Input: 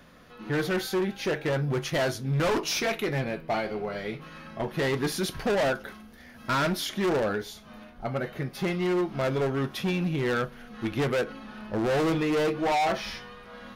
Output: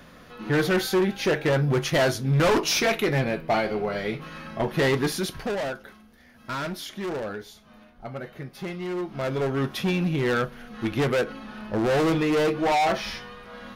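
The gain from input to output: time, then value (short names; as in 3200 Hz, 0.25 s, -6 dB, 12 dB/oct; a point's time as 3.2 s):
4.9 s +5 dB
5.7 s -5 dB
8.86 s -5 dB
9.64 s +3 dB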